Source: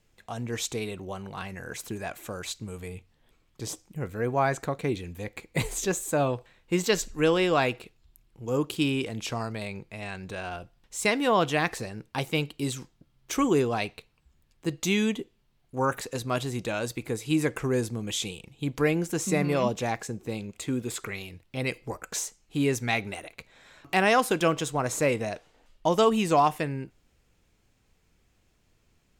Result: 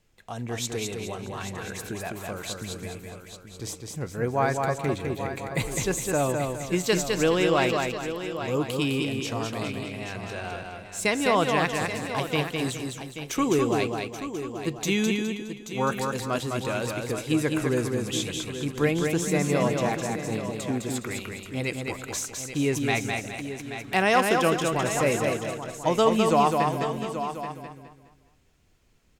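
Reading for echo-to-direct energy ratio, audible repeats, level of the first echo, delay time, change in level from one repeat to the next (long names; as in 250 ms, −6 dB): −2.5 dB, 7, −4.0 dB, 207 ms, −3.5 dB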